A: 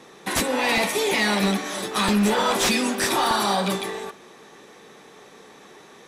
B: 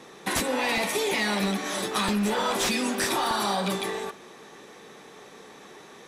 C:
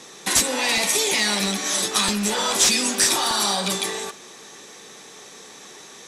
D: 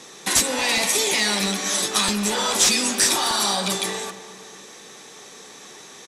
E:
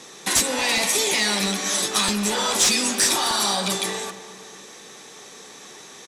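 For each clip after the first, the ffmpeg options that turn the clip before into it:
-af "acompressor=threshold=0.0708:ratio=6"
-af "equalizer=f=6900:t=o:w=2:g=14.5"
-filter_complex "[0:a]asplit=2[s0][s1];[s1]adelay=225,lowpass=f=2000:p=1,volume=0.224,asplit=2[s2][s3];[s3]adelay=225,lowpass=f=2000:p=1,volume=0.52,asplit=2[s4][s5];[s5]adelay=225,lowpass=f=2000:p=1,volume=0.52,asplit=2[s6][s7];[s7]adelay=225,lowpass=f=2000:p=1,volume=0.52,asplit=2[s8][s9];[s9]adelay=225,lowpass=f=2000:p=1,volume=0.52[s10];[s0][s2][s4][s6][s8][s10]amix=inputs=6:normalize=0"
-af "asoftclip=type=tanh:threshold=0.422"

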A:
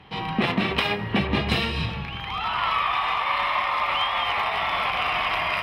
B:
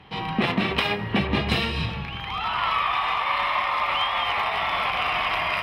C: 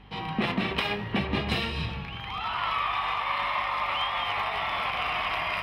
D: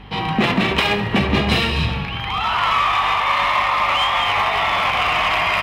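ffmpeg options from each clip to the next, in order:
-af anull
-af "aeval=exprs='val(0)+0.00447*(sin(2*PI*50*n/s)+sin(2*PI*2*50*n/s)/2+sin(2*PI*3*50*n/s)/3+sin(2*PI*4*50*n/s)/4+sin(2*PI*5*50*n/s)/5)':c=same,flanger=delay=9.5:depth=7.8:regen=88:speed=0.69:shape=triangular"
-filter_complex "[0:a]asplit=2[s0][s1];[s1]volume=25.1,asoftclip=hard,volume=0.0398,volume=0.596[s2];[s0][s2]amix=inputs=2:normalize=0,aecho=1:1:69|138|207|276|345|414:0.188|0.111|0.0656|0.0387|0.0228|0.0135,volume=2.37"

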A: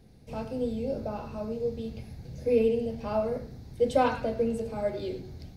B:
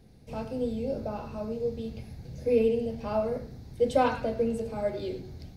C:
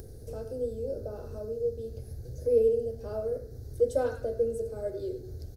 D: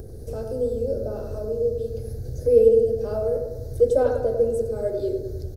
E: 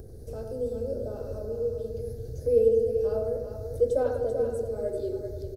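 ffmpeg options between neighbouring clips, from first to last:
-af anull
-af "firequalizer=gain_entry='entry(110,0);entry(170,-17);entry(420,3);entry(930,-19);entry(1500,-7);entry(2300,-23);entry(4100,-11);entry(5900,-3);entry(11000,3)':delay=0.05:min_phase=1,acompressor=mode=upward:threshold=0.0224:ratio=2.5"
-filter_complex "[0:a]acrossover=split=1200[s0][s1];[s0]aecho=1:1:99|198|297|396|495|594|693:0.501|0.276|0.152|0.0834|0.0459|0.0252|0.0139[s2];[s1]alimiter=level_in=7.5:limit=0.0631:level=0:latency=1:release=405,volume=0.133[s3];[s2][s3]amix=inputs=2:normalize=0,volume=2.24"
-af "aecho=1:1:389:0.398,volume=0.501"

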